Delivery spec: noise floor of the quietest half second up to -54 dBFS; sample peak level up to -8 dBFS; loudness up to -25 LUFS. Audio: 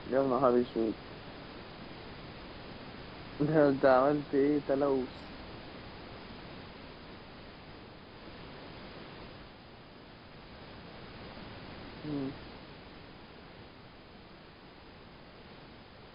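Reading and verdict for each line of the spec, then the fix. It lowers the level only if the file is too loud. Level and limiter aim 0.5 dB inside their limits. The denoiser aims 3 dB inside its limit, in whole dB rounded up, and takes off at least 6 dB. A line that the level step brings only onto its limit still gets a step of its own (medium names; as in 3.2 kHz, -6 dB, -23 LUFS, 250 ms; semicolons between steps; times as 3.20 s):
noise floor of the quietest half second -53 dBFS: fail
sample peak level -12.5 dBFS: pass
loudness -30.0 LUFS: pass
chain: noise reduction 6 dB, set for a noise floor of -53 dBFS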